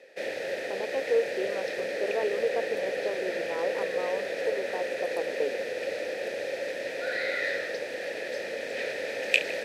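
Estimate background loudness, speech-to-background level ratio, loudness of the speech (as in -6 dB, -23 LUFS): -31.5 LUFS, -2.5 dB, -34.0 LUFS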